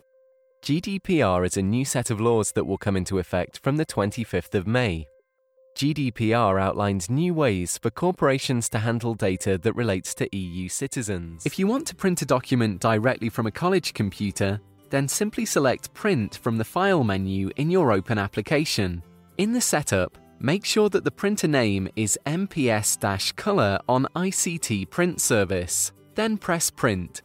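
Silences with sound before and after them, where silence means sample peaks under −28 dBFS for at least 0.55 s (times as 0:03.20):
0:05.03–0:05.77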